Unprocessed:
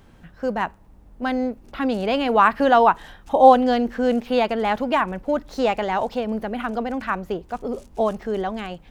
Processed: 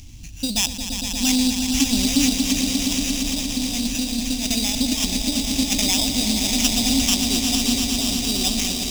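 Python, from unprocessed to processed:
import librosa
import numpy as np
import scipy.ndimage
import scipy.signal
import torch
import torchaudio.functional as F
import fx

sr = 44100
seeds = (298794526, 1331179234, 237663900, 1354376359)

p1 = fx.over_compress(x, sr, threshold_db=-23.0, ratio=-0.5)
p2 = fx.high_shelf(p1, sr, hz=4700.0, db=10.5)
p3 = p2 + fx.echo_swell(p2, sr, ms=117, loudest=5, wet_db=-8.0, dry=0)
p4 = fx.sample_hold(p3, sr, seeds[0], rate_hz=4300.0, jitter_pct=0)
p5 = fx.curve_eq(p4, sr, hz=(120.0, 170.0, 280.0, 440.0, 700.0, 1500.0, 2400.0, 6100.0, 11000.0), db=(0, -16, -5, -28, -20, -28, -6, 5, -4))
y = F.gain(torch.from_numpy(p5), 8.5).numpy()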